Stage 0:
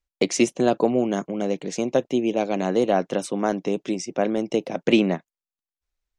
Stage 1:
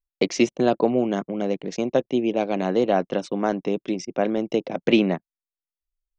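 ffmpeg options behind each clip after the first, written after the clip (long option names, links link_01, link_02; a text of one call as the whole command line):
ffmpeg -i in.wav -af "anlmdn=1.58,lowpass=frequency=5600:width=0.5412,lowpass=frequency=5600:width=1.3066" out.wav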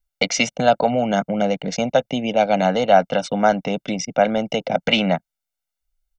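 ffmpeg -i in.wav -filter_complex "[0:a]acrossover=split=680[link_01][link_02];[link_01]alimiter=limit=-18dB:level=0:latency=1:release=153[link_03];[link_03][link_02]amix=inputs=2:normalize=0,aecho=1:1:1.4:0.88,volume=6dB" out.wav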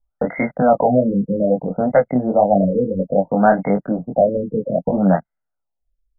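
ffmpeg -i in.wav -af "acontrast=61,flanger=delay=20:depth=4:speed=1.6,afftfilt=real='re*lt(b*sr/1024,510*pow(2200/510,0.5+0.5*sin(2*PI*0.61*pts/sr)))':imag='im*lt(b*sr/1024,510*pow(2200/510,0.5+0.5*sin(2*PI*0.61*pts/sr)))':win_size=1024:overlap=0.75,volume=1.5dB" out.wav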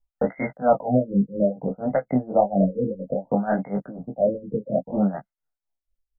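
ffmpeg -i in.wav -filter_complex "[0:a]tremolo=f=4.2:d=0.89,asplit=2[link_01][link_02];[link_02]adelay=15,volume=-8dB[link_03];[link_01][link_03]amix=inputs=2:normalize=0,volume=-3dB" out.wav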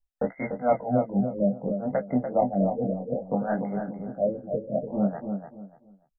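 ffmpeg -i in.wav -filter_complex "[0:a]asplit=2[link_01][link_02];[link_02]adelay=292,lowpass=frequency=1600:poles=1,volume=-6dB,asplit=2[link_03][link_04];[link_04]adelay=292,lowpass=frequency=1600:poles=1,volume=0.27,asplit=2[link_05][link_06];[link_06]adelay=292,lowpass=frequency=1600:poles=1,volume=0.27[link_07];[link_01][link_03][link_05][link_07]amix=inputs=4:normalize=0,volume=-4.5dB" out.wav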